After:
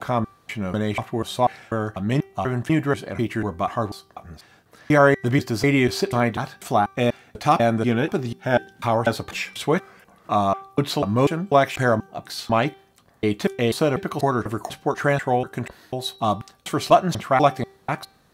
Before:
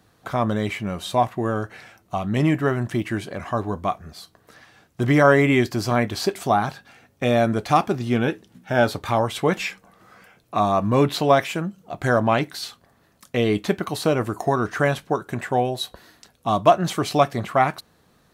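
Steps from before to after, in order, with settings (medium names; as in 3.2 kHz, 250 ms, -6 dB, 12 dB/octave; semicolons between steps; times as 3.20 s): slices played last to first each 245 ms, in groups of 2; de-hum 389.4 Hz, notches 15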